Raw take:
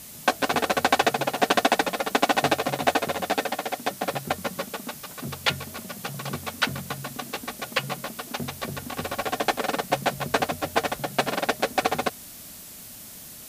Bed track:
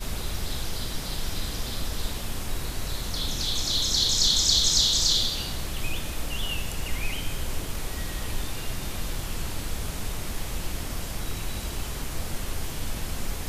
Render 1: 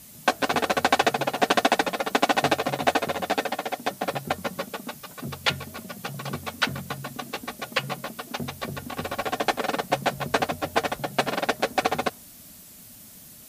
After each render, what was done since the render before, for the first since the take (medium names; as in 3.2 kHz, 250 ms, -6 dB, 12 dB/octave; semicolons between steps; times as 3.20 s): noise reduction 6 dB, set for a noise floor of -43 dBFS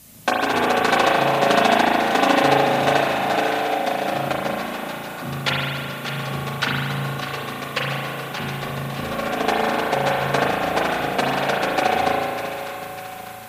on a send: two-band feedback delay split 1 kHz, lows 377 ms, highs 599 ms, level -9 dB; on the sum: spring tank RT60 1.9 s, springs 36 ms, chirp 35 ms, DRR -3.5 dB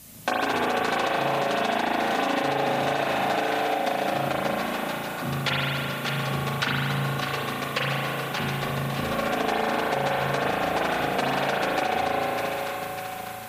peak limiter -10 dBFS, peak gain reduction 7.5 dB; compression, threshold -21 dBFS, peak gain reduction 6 dB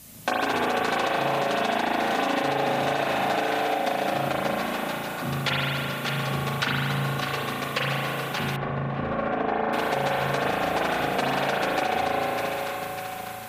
8.56–9.73 s: low-pass 1.7 kHz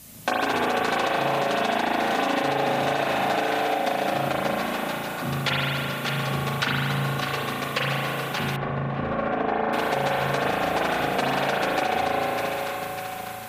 trim +1 dB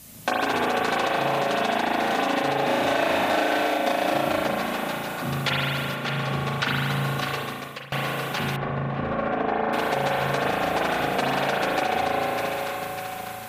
2.64–4.47 s: doubling 33 ms -3 dB; 5.94–6.65 s: treble shelf 6.3 kHz -> 9.8 kHz -11 dB; 7.28–7.92 s: fade out, to -22 dB